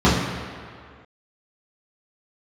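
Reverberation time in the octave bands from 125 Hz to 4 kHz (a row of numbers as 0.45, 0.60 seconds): 1.7, 1.8, 2.0, 2.2, 2.1, 1.6 seconds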